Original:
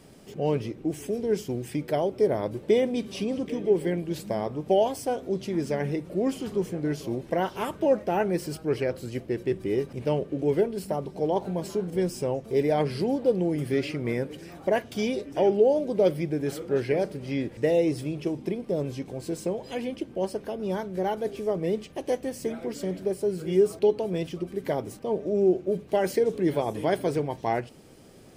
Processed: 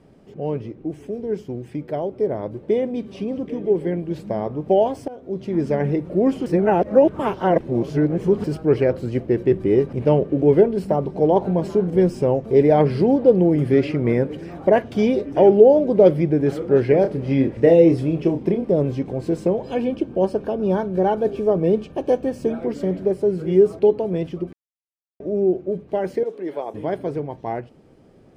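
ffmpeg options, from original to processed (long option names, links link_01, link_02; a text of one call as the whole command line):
ffmpeg -i in.wav -filter_complex "[0:a]asettb=1/sr,asplit=3[link_01][link_02][link_03];[link_01]atrim=end=17.014[link_04];[link_02]atrim=start=17.01:end=18.7,asetpts=PTS-STARTPTS,afade=type=in:duration=0.004:curve=qsin,afade=type=out:start_time=1.686:duration=0.004:curve=qsin,asplit=2[link_05][link_06];[link_06]adelay=30,volume=-7dB[link_07];[link_05][link_07]amix=inputs=2:normalize=0,atrim=end_sample=74529[link_08];[link_03]atrim=start=18.696[link_09];[link_04][link_08]acrossfade=duration=0.004:curve1=hsin:curve2=qsin[link_10];[link_10][link_09]acrossfade=duration=0.004:curve1=qsin:curve2=hsin,asettb=1/sr,asplit=3[link_11][link_12][link_13];[link_11]atrim=end=19.634[link_14];[link_12]atrim=start=19.63:end=22.61,asetpts=PTS-STARTPTS,afade=type=in:duration=0.004:curve=qsin,afade=type=out:start_time=2.976:duration=0.004:curve=qsin,asuperstop=centerf=2000:order=12:qfactor=7.2[link_15];[link_13]atrim=start=22.606[link_16];[link_14][link_15]acrossfade=duration=0.004:curve1=hsin:curve2=qsin[link_17];[link_17][link_16]acrossfade=duration=0.004:curve1=qsin:curve2=hsin,asettb=1/sr,asplit=3[link_18][link_19][link_20];[link_18]atrim=end=26.234[link_21];[link_19]atrim=start=26.23:end=26.74,asetpts=PTS-STARTPTS,afade=type=in:duration=0.004:curve=qsin,afade=type=out:start_time=0.506:duration=0.004:curve=qsin,highpass=420[link_22];[link_20]atrim=start=26.736[link_23];[link_21][link_22]acrossfade=duration=0.004:curve1=hsin:curve2=qsin[link_24];[link_24][link_23]acrossfade=duration=0.004:curve1=qsin:curve2=hsin,asplit=6[link_25][link_26][link_27][link_28][link_29][link_30];[link_25]atrim=end=5.08,asetpts=PTS-STARTPTS,afade=type=out:start_time=5.076:duration=0.004:curve=hsin:silence=0.112202[link_31];[link_26]atrim=start=5.08:end=6.462,asetpts=PTS-STARTPTS,afade=type=in:duration=0.55:silence=0.112202[link_32];[link_27]atrim=start=6.458:end=8.442,asetpts=PTS-STARTPTS,areverse[link_33];[link_28]atrim=start=8.438:end=24.53,asetpts=PTS-STARTPTS,afade=type=out:start_time=16.088:duration=0.004:curve=hsin[link_34];[link_29]atrim=start=24.53:end=25.2,asetpts=PTS-STARTPTS,volume=0[link_35];[link_30]atrim=start=25.2,asetpts=PTS-STARTPTS,afade=type=in:duration=0.004:curve=hsin[link_36];[link_31][link_32]concat=n=2:v=0:a=1[link_37];[link_37][link_33]acrossfade=duration=0.004:curve1=hsin:curve2=hsin[link_38];[link_34][link_35][link_36]concat=n=3:v=0:a=1[link_39];[link_38][link_39]acrossfade=duration=0.004:curve1=hsin:curve2=hsin,dynaudnorm=framelen=320:gausssize=31:maxgain=12dB,lowpass=frequency=1100:poles=1,volume=1dB" out.wav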